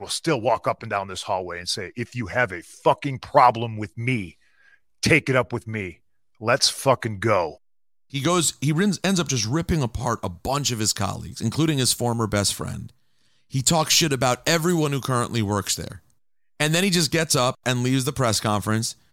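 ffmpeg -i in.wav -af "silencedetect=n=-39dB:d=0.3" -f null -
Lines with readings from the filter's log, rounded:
silence_start: 4.31
silence_end: 5.03 | silence_duration: 0.72
silence_start: 5.93
silence_end: 6.41 | silence_duration: 0.48
silence_start: 7.55
silence_end: 8.13 | silence_duration: 0.58
silence_start: 12.89
silence_end: 13.53 | silence_duration: 0.63
silence_start: 15.97
silence_end: 16.60 | silence_duration: 0.63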